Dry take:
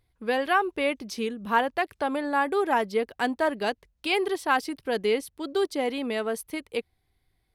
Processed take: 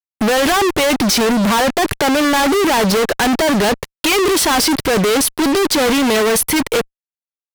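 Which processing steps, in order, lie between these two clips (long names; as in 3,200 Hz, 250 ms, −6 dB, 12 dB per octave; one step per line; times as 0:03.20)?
power curve on the samples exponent 0.7
fuzz pedal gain 48 dB, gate −42 dBFS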